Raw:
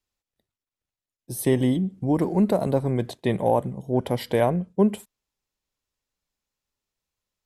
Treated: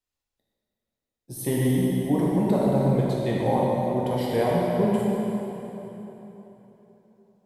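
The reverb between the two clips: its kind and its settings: plate-style reverb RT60 3.7 s, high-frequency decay 0.75×, DRR -5.5 dB; trim -6.5 dB

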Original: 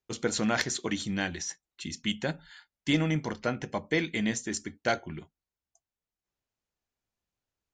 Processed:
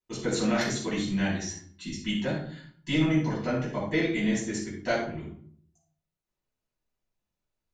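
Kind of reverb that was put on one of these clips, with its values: simulated room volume 670 m³, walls furnished, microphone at 9.5 m; trim -11 dB

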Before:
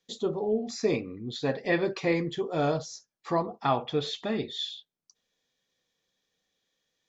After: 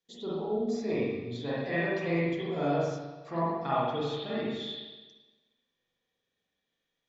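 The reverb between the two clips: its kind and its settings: spring tank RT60 1.2 s, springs 42/59 ms, chirp 75 ms, DRR -8.5 dB; trim -11 dB

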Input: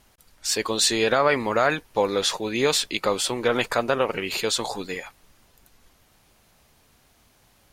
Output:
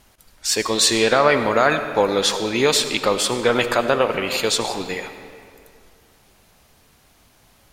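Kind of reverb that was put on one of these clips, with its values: algorithmic reverb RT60 2.3 s, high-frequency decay 0.7×, pre-delay 40 ms, DRR 9 dB; trim +4 dB

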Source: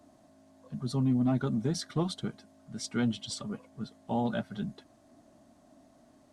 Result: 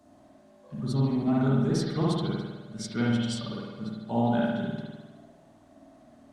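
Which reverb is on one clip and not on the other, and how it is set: spring tank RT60 1.2 s, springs 51 ms, chirp 25 ms, DRR -5 dB; trim -1 dB

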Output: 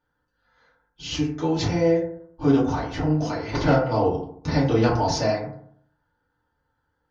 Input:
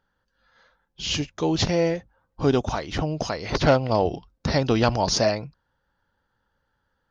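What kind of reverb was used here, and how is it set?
FDN reverb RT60 0.63 s, low-frequency decay 1.1×, high-frequency decay 0.35×, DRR -8 dB; trim -10 dB

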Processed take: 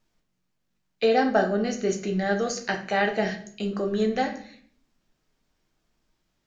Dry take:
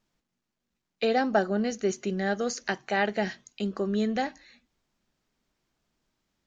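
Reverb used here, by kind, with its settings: simulated room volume 65 m³, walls mixed, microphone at 0.51 m; trim +1 dB

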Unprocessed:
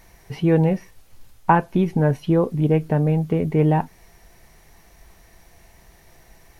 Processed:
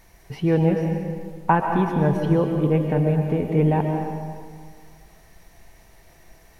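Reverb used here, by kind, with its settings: algorithmic reverb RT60 1.9 s, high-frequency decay 0.7×, pre-delay 90 ms, DRR 2.5 dB; trim -2.5 dB

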